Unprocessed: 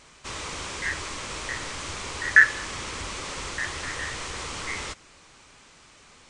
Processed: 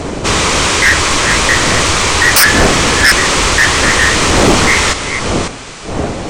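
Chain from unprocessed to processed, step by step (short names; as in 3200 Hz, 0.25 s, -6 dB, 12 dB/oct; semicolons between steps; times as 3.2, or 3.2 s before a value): reverse delay 0.548 s, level -8.5 dB; wind noise 500 Hz -40 dBFS; sine folder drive 20 dB, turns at -2 dBFS; gain -1 dB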